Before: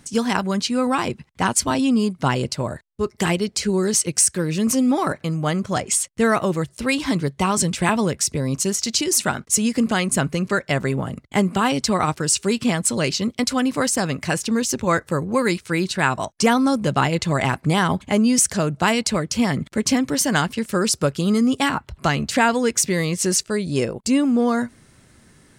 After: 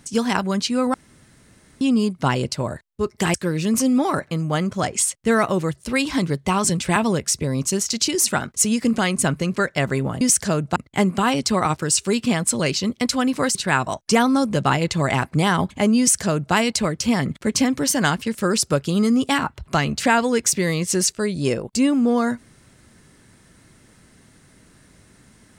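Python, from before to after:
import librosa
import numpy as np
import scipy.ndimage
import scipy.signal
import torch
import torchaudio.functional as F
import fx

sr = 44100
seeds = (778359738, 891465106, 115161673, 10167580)

y = fx.edit(x, sr, fx.room_tone_fill(start_s=0.94, length_s=0.87),
    fx.cut(start_s=3.34, length_s=0.93),
    fx.cut(start_s=13.93, length_s=1.93),
    fx.duplicate(start_s=18.3, length_s=0.55, to_s=11.14), tone=tone)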